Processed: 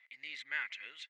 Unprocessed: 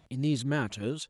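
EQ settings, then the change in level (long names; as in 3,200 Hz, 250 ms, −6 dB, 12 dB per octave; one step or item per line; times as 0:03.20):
four-pole ladder band-pass 2,100 Hz, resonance 90%
high-frequency loss of the air 53 metres
+8.5 dB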